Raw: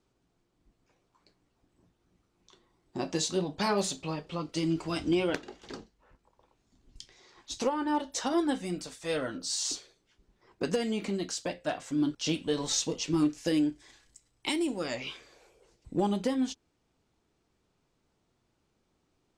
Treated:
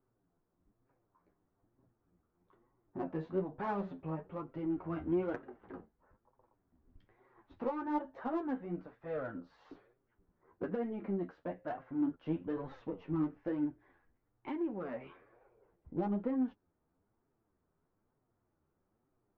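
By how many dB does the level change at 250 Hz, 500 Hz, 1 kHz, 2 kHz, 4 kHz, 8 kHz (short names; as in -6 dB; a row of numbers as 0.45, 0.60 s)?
-6.0 dB, -6.5 dB, -6.5 dB, -11.5 dB, under -30 dB, under -40 dB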